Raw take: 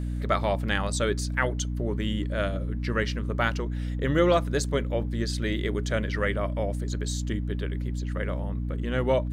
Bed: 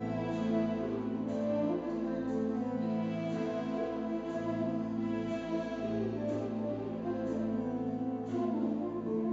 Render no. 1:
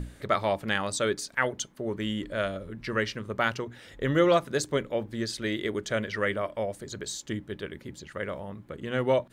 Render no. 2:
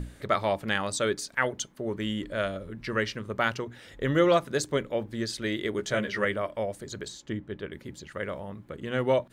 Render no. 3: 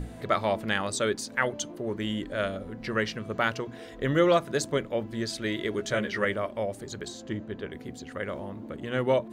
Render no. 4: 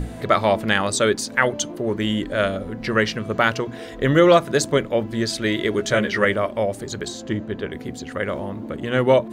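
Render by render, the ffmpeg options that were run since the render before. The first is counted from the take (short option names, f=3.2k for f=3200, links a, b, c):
-af "bandreject=f=60:t=h:w=6,bandreject=f=120:t=h:w=6,bandreject=f=180:t=h:w=6,bandreject=f=240:t=h:w=6,bandreject=f=300:t=h:w=6"
-filter_complex "[0:a]asettb=1/sr,asplit=3[a][b][c];[a]atrim=end=5.774[d];[b]atrim=start=5.77:end=6.25,asetpts=PTS-STARTPTS,afade=t=in:d=0.004:c=qsin,afade=t=out:st=0.476:d=0.004:c=qsin,asplit=2[e][f];[f]adelay=15,volume=-3.5dB[g];[e][g]amix=inputs=2:normalize=0,atrim=end_sample=21168[h];[c]atrim=start=6.246[i];[d][h]acrossfade=d=0.004:c1=hsin:c2=qsin[j];[j][i]acrossfade=d=0.004:c1=qsin:c2=hsin,asettb=1/sr,asplit=3[k][l][m];[k]atrim=end=7.084[n];[l]atrim=start=7.08:end=7.72,asetpts=PTS-STARTPTS,afade=t=in:d=0.004:c=qsin,afade=t=out:st=0.636:d=0.004:c=qsin,lowpass=f=2.3k:p=1[o];[m]atrim=start=7.716[p];[n][o]acrossfade=d=0.004:c1=hsin:c2=qsin[q];[q][p]acrossfade=d=0.004:c1=qsin:c2=hsin"
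-filter_complex "[1:a]volume=-10.5dB[a];[0:a][a]amix=inputs=2:normalize=0"
-af "volume=8.5dB,alimiter=limit=-3dB:level=0:latency=1"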